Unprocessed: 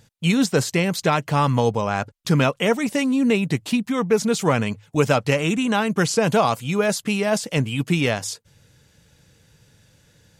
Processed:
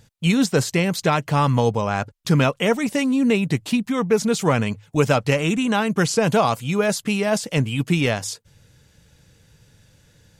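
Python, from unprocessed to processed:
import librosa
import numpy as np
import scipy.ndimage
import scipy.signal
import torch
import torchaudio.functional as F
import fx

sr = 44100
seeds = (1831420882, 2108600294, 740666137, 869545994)

y = fx.low_shelf(x, sr, hz=67.0, db=7.5)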